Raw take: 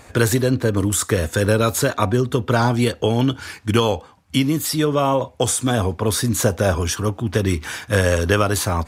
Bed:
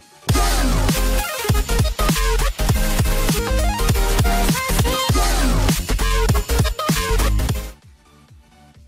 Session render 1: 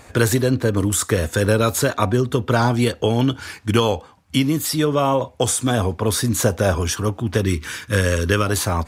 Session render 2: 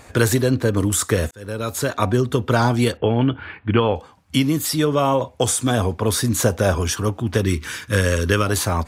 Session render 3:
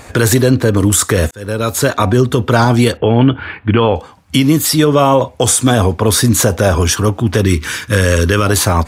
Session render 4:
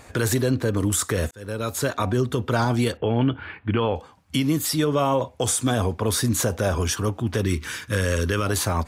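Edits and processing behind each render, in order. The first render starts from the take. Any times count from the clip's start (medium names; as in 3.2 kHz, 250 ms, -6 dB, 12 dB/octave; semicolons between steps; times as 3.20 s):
7.44–8.47 s: peaking EQ 740 Hz -14.5 dB 0.49 oct
1.31–2.10 s: fade in linear; 2.97–3.96 s: inverse Chebyshev low-pass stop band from 5.6 kHz
loudness maximiser +9 dB
trim -11 dB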